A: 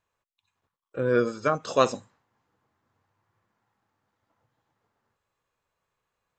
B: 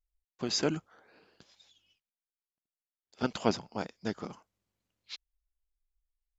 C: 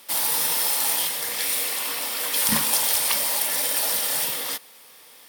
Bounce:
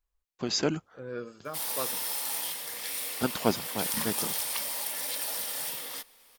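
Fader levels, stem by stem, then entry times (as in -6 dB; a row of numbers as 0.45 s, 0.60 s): -15.0 dB, +2.0 dB, -10.0 dB; 0.00 s, 0.00 s, 1.45 s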